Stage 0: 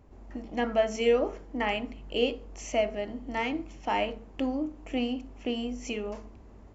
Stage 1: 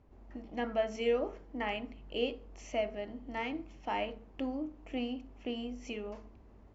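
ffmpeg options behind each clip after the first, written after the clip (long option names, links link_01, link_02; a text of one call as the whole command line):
ffmpeg -i in.wav -af "lowpass=5200,volume=-6.5dB" out.wav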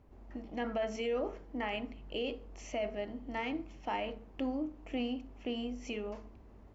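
ffmpeg -i in.wav -af "alimiter=level_in=4dB:limit=-24dB:level=0:latency=1:release=19,volume=-4dB,volume=1.5dB" out.wav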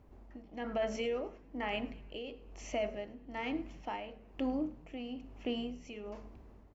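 ffmpeg -i in.wav -filter_complex "[0:a]tremolo=f=1.1:d=0.66,asplit=5[link_01][link_02][link_03][link_04][link_05];[link_02]adelay=105,afreqshift=-72,volume=-22dB[link_06];[link_03]adelay=210,afreqshift=-144,volume=-27.7dB[link_07];[link_04]adelay=315,afreqshift=-216,volume=-33.4dB[link_08];[link_05]adelay=420,afreqshift=-288,volume=-39dB[link_09];[link_01][link_06][link_07][link_08][link_09]amix=inputs=5:normalize=0,volume=1.5dB" out.wav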